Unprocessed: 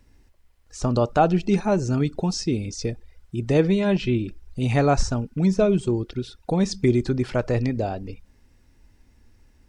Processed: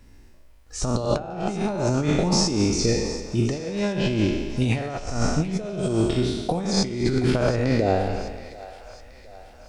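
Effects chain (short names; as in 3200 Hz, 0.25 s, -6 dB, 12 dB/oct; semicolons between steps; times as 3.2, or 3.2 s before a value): spectral trails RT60 1.30 s; negative-ratio compressor -22 dBFS, ratio -0.5; split-band echo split 560 Hz, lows 82 ms, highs 0.725 s, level -15 dB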